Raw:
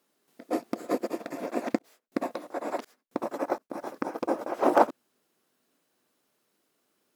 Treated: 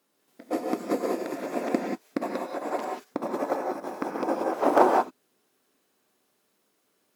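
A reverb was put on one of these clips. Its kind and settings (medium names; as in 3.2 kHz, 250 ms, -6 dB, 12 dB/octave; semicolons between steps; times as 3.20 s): gated-style reverb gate 210 ms rising, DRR 0 dB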